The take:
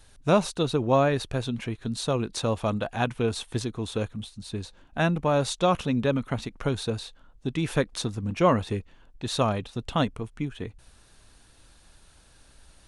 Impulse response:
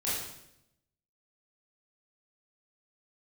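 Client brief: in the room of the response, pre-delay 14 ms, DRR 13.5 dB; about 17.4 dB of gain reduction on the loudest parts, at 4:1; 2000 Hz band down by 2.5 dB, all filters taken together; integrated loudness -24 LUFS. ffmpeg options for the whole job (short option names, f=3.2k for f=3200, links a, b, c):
-filter_complex "[0:a]equalizer=f=2k:t=o:g=-3.5,acompressor=threshold=-38dB:ratio=4,asplit=2[a][b];[1:a]atrim=start_sample=2205,adelay=14[c];[b][c]afir=irnorm=-1:irlink=0,volume=-20dB[d];[a][d]amix=inputs=2:normalize=0,volume=17dB"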